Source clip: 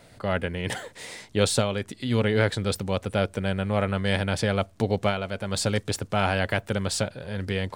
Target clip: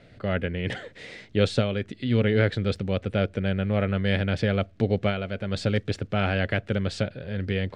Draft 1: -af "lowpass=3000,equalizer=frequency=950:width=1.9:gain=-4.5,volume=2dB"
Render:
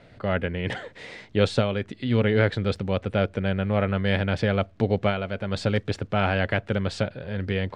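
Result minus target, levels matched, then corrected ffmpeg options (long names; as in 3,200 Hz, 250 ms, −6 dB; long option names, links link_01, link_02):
1,000 Hz band +3.5 dB
-af "lowpass=3000,equalizer=frequency=950:width=1.9:gain=-13,volume=2dB"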